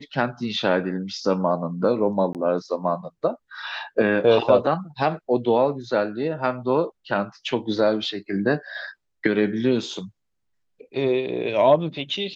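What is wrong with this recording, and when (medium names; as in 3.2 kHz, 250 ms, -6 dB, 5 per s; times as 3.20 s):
2.33–2.35 s: dropout 18 ms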